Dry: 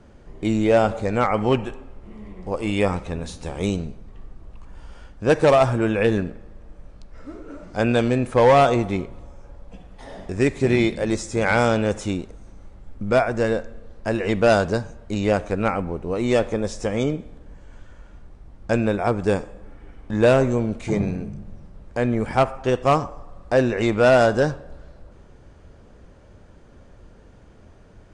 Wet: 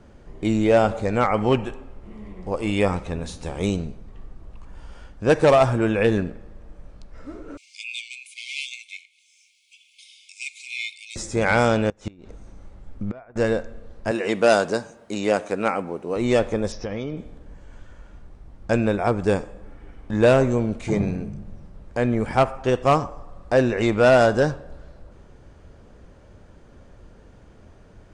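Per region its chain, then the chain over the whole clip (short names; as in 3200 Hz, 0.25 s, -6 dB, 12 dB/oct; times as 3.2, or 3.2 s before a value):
7.57–11.16 brick-wall FIR high-pass 2100 Hz + mismatched tape noise reduction encoder only
11.89–13.36 treble ducked by the level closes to 2000 Hz, closed at -17.5 dBFS + flipped gate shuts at -15 dBFS, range -25 dB
14.11–16.16 HPF 230 Hz + high shelf 9200 Hz +11 dB
16.72–17.17 elliptic low-pass 5700 Hz + compressor, threshold -24 dBFS
whole clip: dry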